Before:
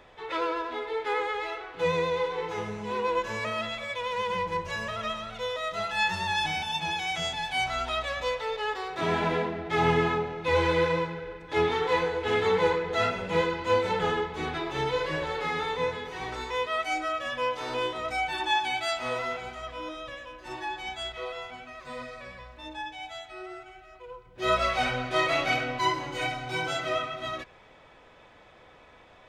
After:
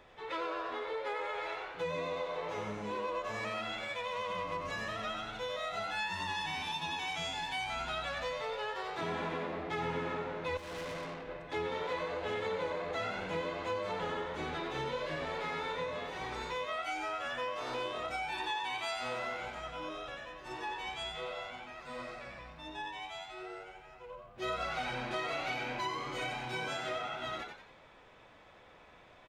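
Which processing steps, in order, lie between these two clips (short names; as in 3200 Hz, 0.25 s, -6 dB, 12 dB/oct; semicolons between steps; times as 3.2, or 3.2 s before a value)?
frequency-shifting echo 91 ms, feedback 40%, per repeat +99 Hz, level -6 dB; 10.57–11.29 tube stage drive 34 dB, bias 0.75; compressor 4:1, threshold -29 dBFS, peak gain reduction 10 dB; gain -5 dB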